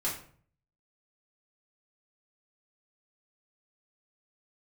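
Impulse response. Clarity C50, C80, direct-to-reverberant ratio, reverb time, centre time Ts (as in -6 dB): 6.5 dB, 10.5 dB, -7.5 dB, 0.50 s, 31 ms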